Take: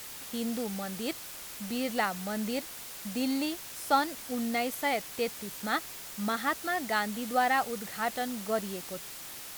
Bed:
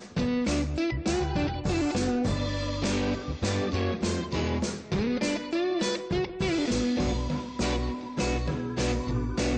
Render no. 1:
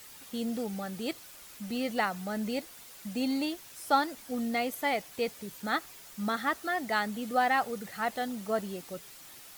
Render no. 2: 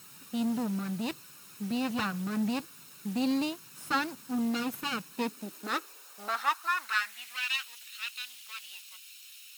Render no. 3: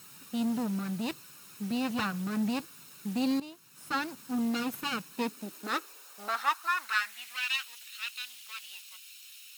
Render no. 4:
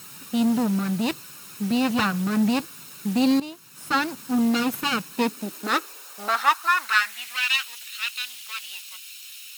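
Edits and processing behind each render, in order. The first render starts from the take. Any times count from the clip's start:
broadband denoise 8 dB, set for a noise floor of −44 dBFS
lower of the sound and its delayed copy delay 0.74 ms; high-pass filter sweep 150 Hz → 2,900 Hz, 0:04.93–0:07.50
0:03.40–0:04.23: fade in, from −15.5 dB
level +9 dB

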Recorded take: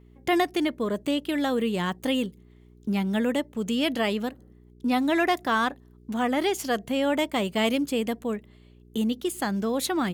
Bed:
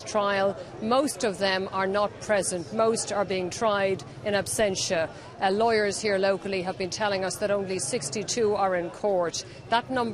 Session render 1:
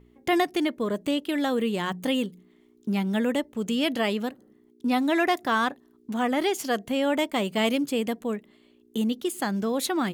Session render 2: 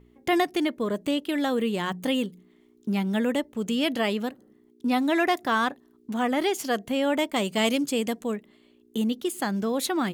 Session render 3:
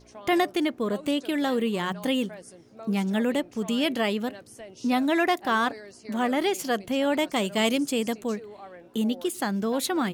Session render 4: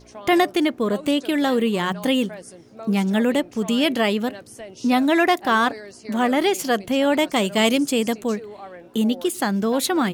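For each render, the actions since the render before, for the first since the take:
hum removal 60 Hz, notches 3
0:07.36–0:08.32: parametric band 6,900 Hz +6.5 dB 1.4 octaves
mix in bed −19.5 dB
level +5.5 dB

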